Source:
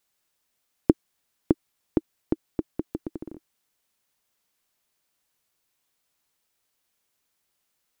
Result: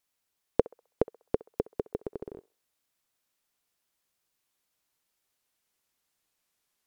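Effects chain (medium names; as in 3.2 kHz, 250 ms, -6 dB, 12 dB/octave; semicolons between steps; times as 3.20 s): gliding tape speed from 154% -> 79%; band-passed feedback delay 65 ms, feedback 41%, band-pass 960 Hz, level -19 dB; trim -3.5 dB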